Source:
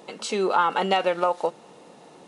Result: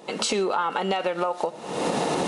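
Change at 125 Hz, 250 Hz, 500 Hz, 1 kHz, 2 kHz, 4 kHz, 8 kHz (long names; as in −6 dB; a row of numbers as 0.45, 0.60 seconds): +4.0 dB, +3.0 dB, 0.0 dB, −2.5 dB, −1.0 dB, +2.5 dB, can't be measured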